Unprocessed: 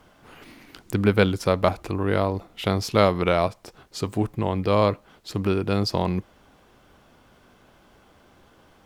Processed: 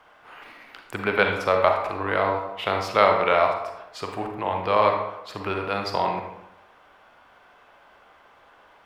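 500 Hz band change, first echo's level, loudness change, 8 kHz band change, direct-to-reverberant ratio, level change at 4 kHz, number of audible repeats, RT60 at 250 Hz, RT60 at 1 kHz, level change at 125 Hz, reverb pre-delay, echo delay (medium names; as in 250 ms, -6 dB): 0.0 dB, no echo, 0.0 dB, no reading, 2.5 dB, -1.0 dB, no echo, 0.80 s, 0.85 s, -11.5 dB, 36 ms, no echo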